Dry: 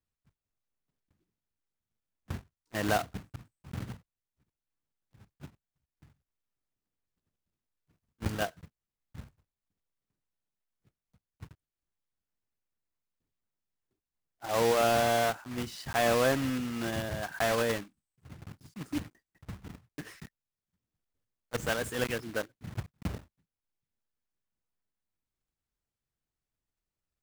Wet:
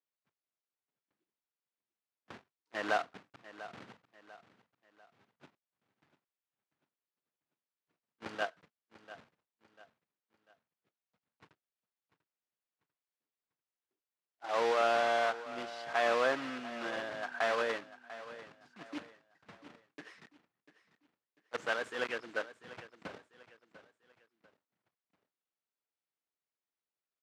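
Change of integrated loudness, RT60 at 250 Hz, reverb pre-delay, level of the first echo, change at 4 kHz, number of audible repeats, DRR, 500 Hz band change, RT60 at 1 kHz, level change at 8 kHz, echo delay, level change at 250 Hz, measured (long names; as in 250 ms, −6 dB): −3.0 dB, no reverb audible, no reverb audible, −15.5 dB, −5.0 dB, 3, no reverb audible, −4.0 dB, no reverb audible, −13.5 dB, 694 ms, −10.5 dB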